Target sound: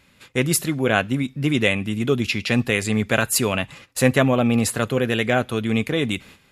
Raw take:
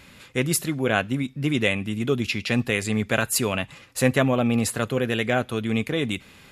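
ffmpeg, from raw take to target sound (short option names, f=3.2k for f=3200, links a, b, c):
-af "agate=range=-11dB:threshold=-46dB:ratio=16:detection=peak,volume=3dB"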